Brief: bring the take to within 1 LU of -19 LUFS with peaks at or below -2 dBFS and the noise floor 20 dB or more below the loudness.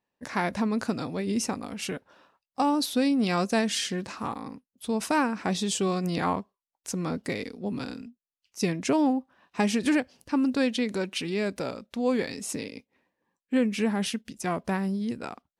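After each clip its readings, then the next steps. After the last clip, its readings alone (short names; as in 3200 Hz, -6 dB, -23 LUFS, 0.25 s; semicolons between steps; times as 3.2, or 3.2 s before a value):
loudness -28.5 LUFS; peak -13.5 dBFS; loudness target -19.0 LUFS
-> gain +9.5 dB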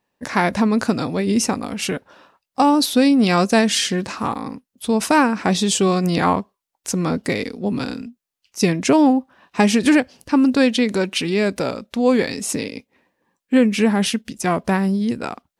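loudness -19.0 LUFS; peak -4.0 dBFS; noise floor -82 dBFS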